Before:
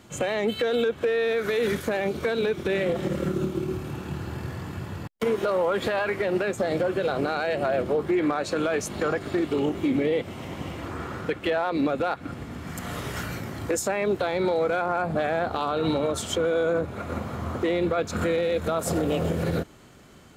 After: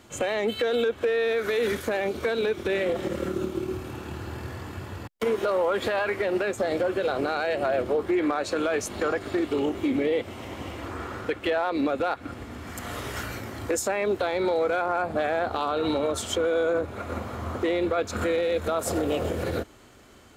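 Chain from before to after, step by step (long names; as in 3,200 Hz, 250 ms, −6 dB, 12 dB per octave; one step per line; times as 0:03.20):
parametric band 160 Hz −13.5 dB 0.48 octaves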